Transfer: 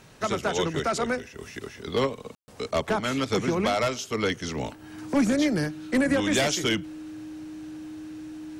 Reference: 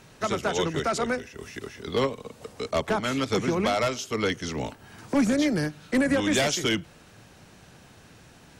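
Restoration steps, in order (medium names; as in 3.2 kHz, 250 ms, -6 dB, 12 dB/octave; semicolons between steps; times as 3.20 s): band-stop 310 Hz, Q 30; room tone fill 2.35–2.48 s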